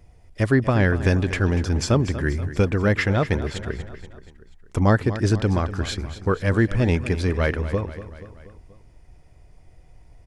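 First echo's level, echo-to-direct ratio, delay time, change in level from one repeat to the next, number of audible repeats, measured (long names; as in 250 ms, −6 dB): −13.5 dB, −12.0 dB, 240 ms, −5.0 dB, 4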